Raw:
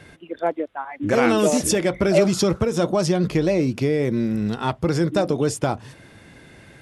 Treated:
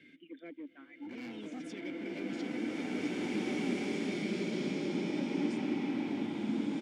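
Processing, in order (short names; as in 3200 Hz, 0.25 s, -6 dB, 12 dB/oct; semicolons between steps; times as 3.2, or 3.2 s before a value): vowel filter i; low shelf 200 Hz -4.5 dB; in parallel at -5 dB: soft clip -36.5 dBFS, distortion -6 dB; on the sum: downsampling 22050 Hz; hard clip -28 dBFS, distortion -12 dB; reverse; compressor 10:1, threshold -40 dBFS, peak gain reduction 10.5 dB; reverse; HPF 94 Hz; bloom reverb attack 2.26 s, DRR -10.5 dB; gain -2.5 dB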